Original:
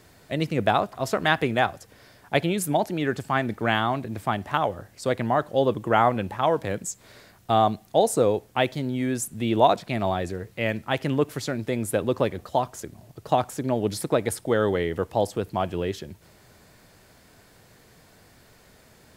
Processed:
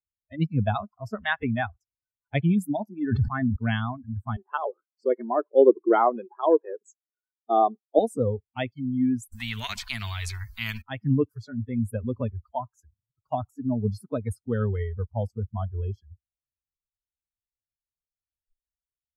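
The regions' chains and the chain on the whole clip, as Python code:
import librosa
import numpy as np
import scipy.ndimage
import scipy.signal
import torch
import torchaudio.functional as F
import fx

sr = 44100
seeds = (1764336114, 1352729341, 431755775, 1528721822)

y = fx.chain(x, sr, fx.air_absorb(metres=190.0),
    fx.sustainer(db_per_s=37.0), at=(2.95, 3.56))
y = fx.chain(y, sr, fx.highpass_res(hz=370.0, q=3.6),
    fx.air_absorb(metres=58.0), at=(4.36, 7.99))
y = fx.chain(y, sr, fx.low_shelf(hz=410.0, db=-4.5),
    fx.spectral_comp(ratio=4.0), at=(9.32, 10.82))
y = fx.bin_expand(y, sr, power=2.0)
y = fx.noise_reduce_blind(y, sr, reduce_db=29)
y = fx.bass_treble(y, sr, bass_db=13, treble_db=-12)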